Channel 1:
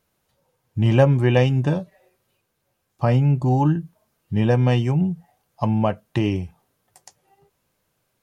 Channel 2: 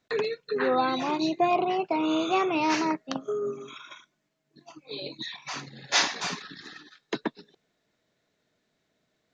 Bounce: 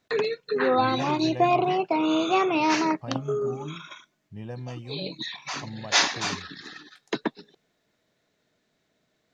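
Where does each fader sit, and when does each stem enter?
-19.0, +2.5 dB; 0.00, 0.00 s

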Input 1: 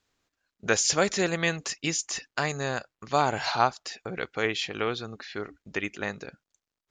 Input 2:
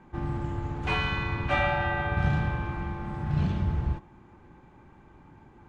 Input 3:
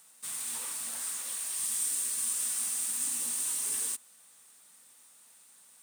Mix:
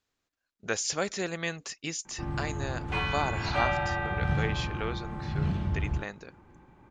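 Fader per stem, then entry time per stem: -6.5 dB, -2.5 dB, off; 0.00 s, 2.05 s, off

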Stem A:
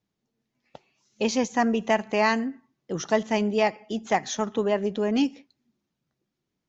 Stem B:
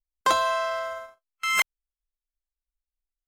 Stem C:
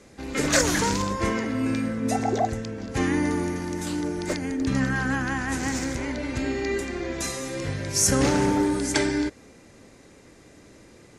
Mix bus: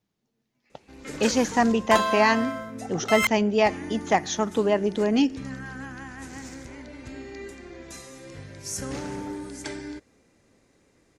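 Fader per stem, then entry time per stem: +2.0, -1.5, -12.0 dB; 0.00, 1.65, 0.70 s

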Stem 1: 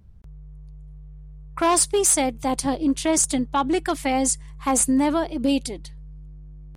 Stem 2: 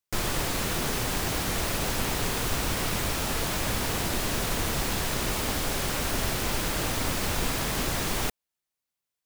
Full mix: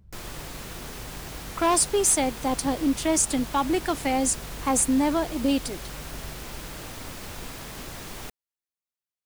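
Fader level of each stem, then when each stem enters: -2.5, -10.0 dB; 0.00, 0.00 s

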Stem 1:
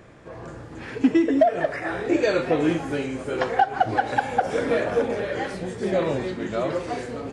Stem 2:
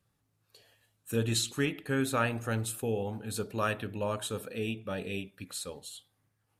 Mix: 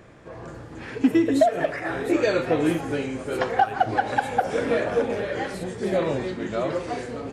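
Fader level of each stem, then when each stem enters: -0.5, -9.0 dB; 0.00, 0.00 s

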